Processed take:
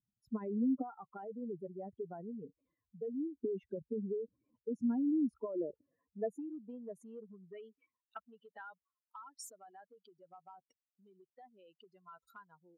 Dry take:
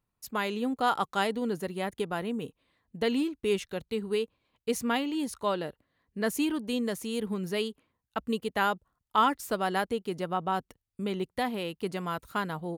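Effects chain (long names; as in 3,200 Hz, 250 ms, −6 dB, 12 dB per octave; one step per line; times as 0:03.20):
expanding power law on the bin magnitudes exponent 3
0:00.93–0:03.37: parametric band 250 Hz −15 dB 1.3 octaves
downward compressor 12 to 1, threshold −32 dBFS, peak gain reduction 13 dB
band-pass filter sweep 270 Hz → 5,400 Hz, 0:05.31–0:08.97
level +5 dB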